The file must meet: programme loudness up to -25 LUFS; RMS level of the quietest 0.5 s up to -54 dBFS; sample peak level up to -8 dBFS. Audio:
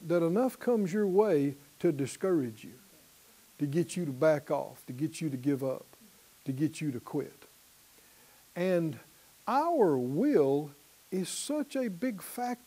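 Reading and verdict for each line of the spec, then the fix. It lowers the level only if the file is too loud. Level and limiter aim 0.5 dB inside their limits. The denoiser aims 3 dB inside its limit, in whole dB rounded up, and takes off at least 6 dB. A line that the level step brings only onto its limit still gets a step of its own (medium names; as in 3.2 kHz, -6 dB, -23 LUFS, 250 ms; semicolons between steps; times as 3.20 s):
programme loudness -31.0 LUFS: pass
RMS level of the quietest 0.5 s -60 dBFS: pass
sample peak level -13.5 dBFS: pass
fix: none needed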